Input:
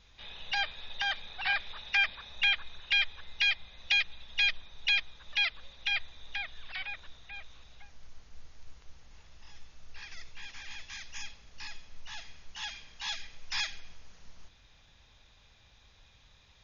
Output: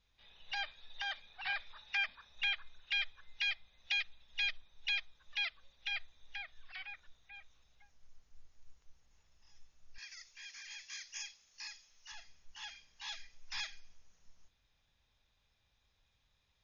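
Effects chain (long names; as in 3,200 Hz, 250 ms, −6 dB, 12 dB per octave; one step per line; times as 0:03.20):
noise reduction from a noise print of the clip's start 8 dB
0:09.98–0:12.12: spectral tilt +3.5 dB per octave
level −8 dB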